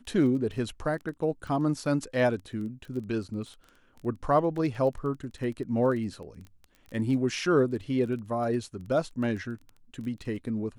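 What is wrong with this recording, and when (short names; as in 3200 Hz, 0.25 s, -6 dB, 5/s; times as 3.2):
crackle 15/s -37 dBFS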